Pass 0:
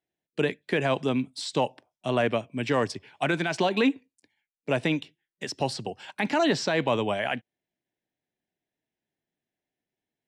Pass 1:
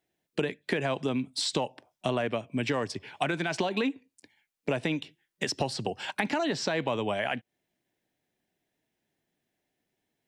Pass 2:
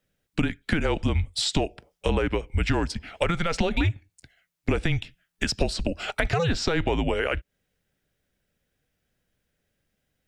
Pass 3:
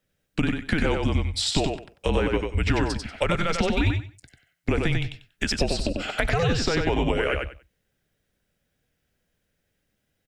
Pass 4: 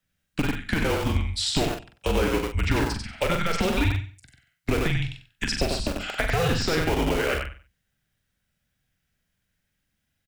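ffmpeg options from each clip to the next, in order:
ffmpeg -i in.wav -af "acompressor=threshold=-34dB:ratio=6,volume=7.5dB" out.wav
ffmpeg -i in.wav -af "lowshelf=frequency=160:gain=7.5,afreqshift=-170,volume=4dB" out.wav
ffmpeg -i in.wav -af "aecho=1:1:94|188|282:0.631|0.126|0.0252" out.wav
ffmpeg -i in.wav -filter_complex "[0:a]acrossover=split=290|680|2300[link_01][link_02][link_03][link_04];[link_02]acrusher=bits=4:mix=0:aa=0.000001[link_05];[link_01][link_05][link_03][link_04]amix=inputs=4:normalize=0,asplit=2[link_06][link_07];[link_07]adelay=43,volume=-6.5dB[link_08];[link_06][link_08]amix=inputs=2:normalize=0,volume=-1.5dB" out.wav

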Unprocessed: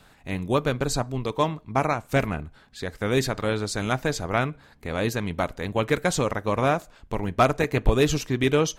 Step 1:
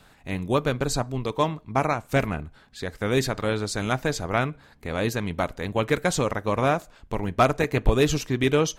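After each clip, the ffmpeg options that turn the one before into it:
ffmpeg -i in.wav -af anull out.wav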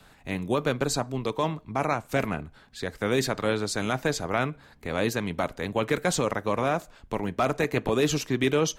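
ffmpeg -i in.wav -filter_complex "[0:a]acrossover=split=130|750|6300[link_01][link_02][link_03][link_04];[link_01]acompressor=threshold=-43dB:ratio=6[link_05];[link_05][link_02][link_03][link_04]amix=inputs=4:normalize=0,alimiter=limit=-13.5dB:level=0:latency=1:release=11" out.wav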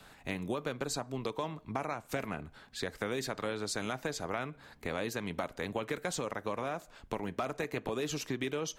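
ffmpeg -i in.wav -af "lowshelf=frequency=190:gain=-5,acompressor=threshold=-32dB:ratio=6" out.wav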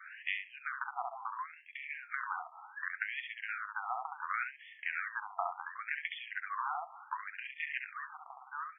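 ffmpeg -i in.wav -filter_complex "[0:a]acompressor=threshold=-38dB:ratio=2.5,asplit=2[link_01][link_02];[link_02]adelay=68,lowpass=frequency=2100:poles=1,volume=-3dB,asplit=2[link_03][link_04];[link_04]adelay=68,lowpass=frequency=2100:poles=1,volume=0.18,asplit=2[link_05][link_06];[link_06]adelay=68,lowpass=frequency=2100:poles=1,volume=0.18[link_07];[link_01][link_03][link_05][link_07]amix=inputs=4:normalize=0,afftfilt=real='re*between(b*sr/1024,950*pow(2500/950,0.5+0.5*sin(2*PI*0.69*pts/sr))/1.41,950*pow(2500/950,0.5+0.5*sin(2*PI*0.69*pts/sr))*1.41)':imag='im*between(b*sr/1024,950*pow(2500/950,0.5+0.5*sin(2*PI*0.69*pts/sr))/1.41,950*pow(2500/950,0.5+0.5*sin(2*PI*0.69*pts/sr))*1.41)':win_size=1024:overlap=0.75,volume=10dB" out.wav

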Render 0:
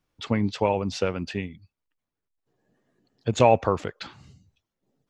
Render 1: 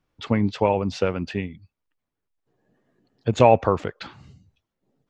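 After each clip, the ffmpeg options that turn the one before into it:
ffmpeg -i in.wav -af "highshelf=frequency=4900:gain=-10,volume=3dB" out.wav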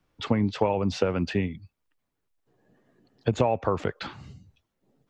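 ffmpeg -i in.wav -filter_complex "[0:a]acrossover=split=120|1100|1400[link_01][link_02][link_03][link_04];[link_04]alimiter=level_in=5.5dB:limit=-24dB:level=0:latency=1:release=19,volume=-5.5dB[link_05];[link_01][link_02][link_03][link_05]amix=inputs=4:normalize=0,acompressor=threshold=-22dB:ratio=10,volume=3dB" out.wav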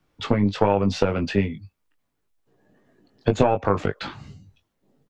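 ffmpeg -i in.wav -filter_complex "[0:a]aeval=exprs='0.422*(cos(1*acos(clip(val(0)/0.422,-1,1)))-cos(1*PI/2))+0.133*(cos(2*acos(clip(val(0)/0.422,-1,1)))-cos(2*PI/2))':channel_layout=same,asplit=2[link_01][link_02];[link_02]adelay=20,volume=-6dB[link_03];[link_01][link_03]amix=inputs=2:normalize=0,volume=2.5dB" out.wav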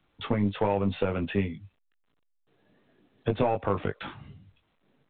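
ffmpeg -i in.wav -af "asoftclip=type=tanh:threshold=-7.5dB,volume=-5dB" -ar 8000 -c:a pcm_alaw out.wav

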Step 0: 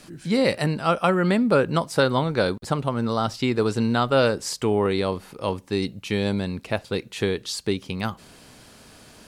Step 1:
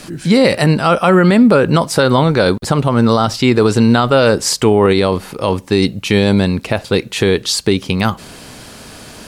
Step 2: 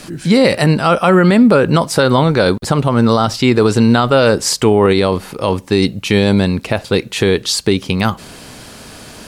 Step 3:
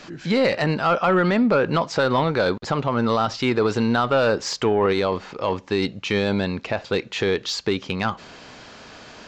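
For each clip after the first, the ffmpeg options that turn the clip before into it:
ffmpeg -i in.wav -af "alimiter=level_in=14.5dB:limit=-1dB:release=50:level=0:latency=1,volume=-1dB" out.wav
ffmpeg -i in.wav -af anull out.wav
ffmpeg -i in.wav -filter_complex "[0:a]aresample=16000,aresample=44100,asplit=2[link_01][link_02];[link_02]highpass=frequency=720:poles=1,volume=9dB,asoftclip=type=tanh:threshold=-1.5dB[link_03];[link_01][link_03]amix=inputs=2:normalize=0,lowpass=frequency=2500:poles=1,volume=-6dB,volume=-7.5dB" out.wav

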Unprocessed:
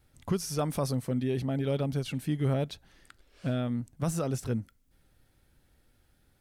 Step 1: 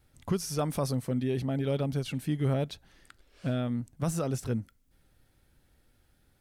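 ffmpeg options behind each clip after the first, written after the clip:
ffmpeg -i in.wav -af anull out.wav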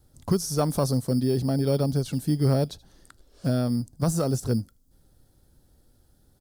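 ffmpeg -i in.wav -filter_complex "[0:a]acrossover=split=590|3400[link_01][link_02][link_03];[link_01]acrusher=samples=9:mix=1:aa=0.000001[link_04];[link_02]adynamicsmooth=sensitivity=3:basefreq=1200[link_05];[link_03]aecho=1:1:78:0.0841[link_06];[link_04][link_05][link_06]amix=inputs=3:normalize=0,volume=6dB" out.wav

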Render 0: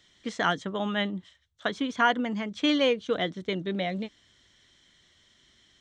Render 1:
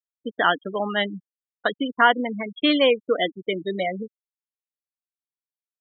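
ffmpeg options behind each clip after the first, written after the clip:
ffmpeg -i in.wav -af "highpass=280,afftfilt=real='re*gte(hypot(re,im),0.0501)':imag='im*gte(hypot(re,im),0.0501)':win_size=1024:overlap=0.75,volume=6.5dB" out.wav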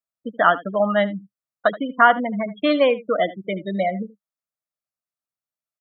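ffmpeg -i in.wav -af "equalizer=frequency=125:width_type=o:width=0.33:gain=10,equalizer=frequency=200:width_type=o:width=0.33:gain=7,equalizer=frequency=400:width_type=o:width=0.33:gain=-6,equalizer=frequency=630:width_type=o:width=0.33:gain=11,equalizer=frequency=1250:width_type=o:width=0.33:gain=9,equalizer=frequency=3150:width_type=o:width=0.33:gain=-7,aecho=1:1:77:0.133,volume=-1dB" out.wav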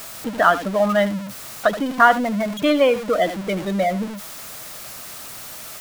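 ffmpeg -i in.wav -af "aeval=exprs='val(0)+0.5*0.0501*sgn(val(0))':channel_layout=same" out.wav

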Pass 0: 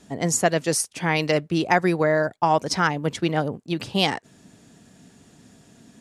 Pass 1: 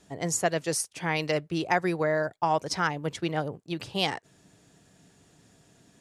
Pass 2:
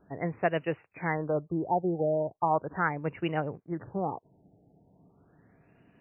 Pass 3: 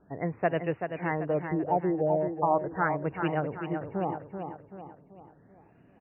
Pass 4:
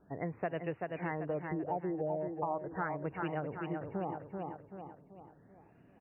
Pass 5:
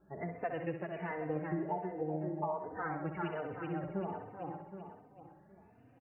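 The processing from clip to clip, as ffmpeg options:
ffmpeg -i in.wav -af "equalizer=frequency=230:width_type=o:width=0.35:gain=-11,volume=-5.5dB" out.wav
ffmpeg -i in.wav -af "afftfilt=real='re*lt(b*sr/1024,860*pow(3000/860,0.5+0.5*sin(2*PI*0.38*pts/sr)))':imag='im*lt(b*sr/1024,860*pow(3000/860,0.5+0.5*sin(2*PI*0.38*pts/sr)))':win_size=1024:overlap=0.75,volume=-1dB" out.wav
ffmpeg -i in.wav -af "aemphasis=mode=reproduction:type=75fm,aecho=1:1:384|768|1152|1536|1920:0.447|0.201|0.0905|0.0407|0.0183" out.wav
ffmpeg -i in.wav -af "acompressor=threshold=-31dB:ratio=3,volume=-3dB" out.wav
ffmpeg -i in.wav -filter_complex "[0:a]aecho=1:1:65|130|195|260|325|390|455:0.398|0.235|0.139|0.0818|0.0482|0.0285|0.0168,asplit=2[link_01][link_02];[link_02]adelay=3.2,afreqshift=1.3[link_03];[link_01][link_03]amix=inputs=2:normalize=1,volume=1dB" out.wav

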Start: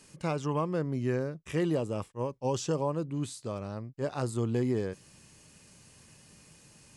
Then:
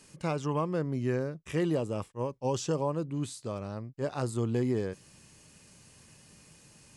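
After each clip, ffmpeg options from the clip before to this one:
ffmpeg -i in.wav -af anull out.wav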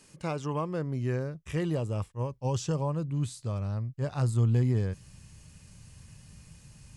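ffmpeg -i in.wav -af "asubboost=boost=8:cutoff=120,volume=-1dB" out.wav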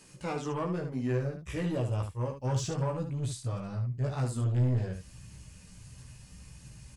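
ffmpeg -i in.wav -filter_complex "[0:a]flanger=delay=0:depth=4.3:regen=-38:speed=1.5:shape=sinusoidal,asoftclip=type=tanh:threshold=-30.5dB,asplit=2[link_01][link_02];[link_02]aecho=0:1:16|74:0.708|0.473[link_03];[link_01][link_03]amix=inputs=2:normalize=0,volume=3dB" out.wav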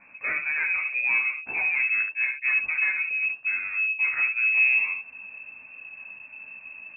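ffmpeg -i in.wav -filter_complex "[0:a]asplit=2[link_01][link_02];[link_02]asoftclip=type=tanh:threshold=-31dB,volume=-8dB[link_03];[link_01][link_03]amix=inputs=2:normalize=0,lowpass=frequency=2300:width_type=q:width=0.5098,lowpass=frequency=2300:width_type=q:width=0.6013,lowpass=frequency=2300:width_type=q:width=0.9,lowpass=frequency=2300:width_type=q:width=2.563,afreqshift=-2700,volume=4dB" out.wav

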